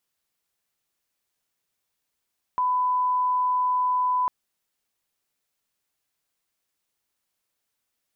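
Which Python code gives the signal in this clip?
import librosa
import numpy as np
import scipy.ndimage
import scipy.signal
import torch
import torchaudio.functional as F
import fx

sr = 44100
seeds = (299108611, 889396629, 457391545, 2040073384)

y = fx.lineup_tone(sr, length_s=1.7, level_db=-20.0)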